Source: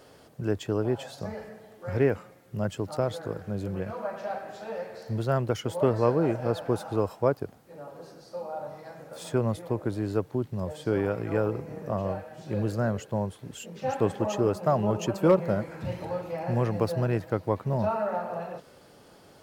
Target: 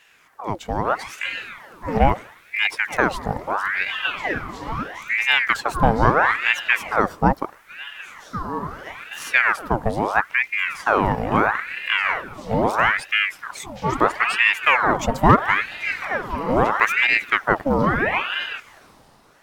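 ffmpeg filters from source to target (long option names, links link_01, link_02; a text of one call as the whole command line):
ffmpeg -i in.wav -af "dynaudnorm=framelen=150:gausssize=11:maxgain=10dB,aeval=exprs='val(0)*sin(2*PI*1300*n/s+1300*0.75/0.76*sin(2*PI*0.76*n/s))':channel_layout=same,volume=1.5dB" out.wav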